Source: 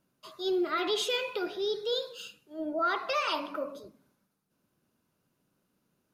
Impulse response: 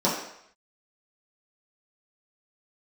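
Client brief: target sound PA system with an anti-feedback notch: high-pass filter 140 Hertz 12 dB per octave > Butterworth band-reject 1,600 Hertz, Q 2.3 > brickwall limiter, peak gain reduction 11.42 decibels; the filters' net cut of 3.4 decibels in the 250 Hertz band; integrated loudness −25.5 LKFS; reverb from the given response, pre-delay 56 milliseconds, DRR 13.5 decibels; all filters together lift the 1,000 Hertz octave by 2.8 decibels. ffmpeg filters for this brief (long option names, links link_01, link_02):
-filter_complex "[0:a]equalizer=frequency=250:width_type=o:gain=-7,equalizer=frequency=1000:width_type=o:gain=6.5,asplit=2[link_01][link_02];[1:a]atrim=start_sample=2205,adelay=56[link_03];[link_02][link_03]afir=irnorm=-1:irlink=0,volume=-28dB[link_04];[link_01][link_04]amix=inputs=2:normalize=0,highpass=140,asuperstop=centerf=1600:order=8:qfactor=2.3,volume=10dB,alimiter=limit=-16.5dB:level=0:latency=1"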